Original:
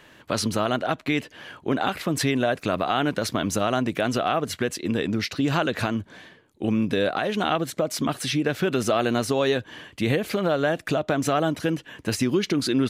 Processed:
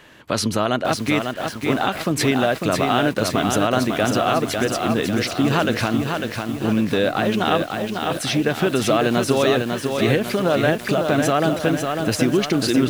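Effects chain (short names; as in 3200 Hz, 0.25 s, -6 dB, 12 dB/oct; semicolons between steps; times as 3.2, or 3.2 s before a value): 7.62–8.11 double band-pass 1600 Hz, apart 1.9 oct; lo-fi delay 0.549 s, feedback 55%, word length 7-bit, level -4.5 dB; gain +3.5 dB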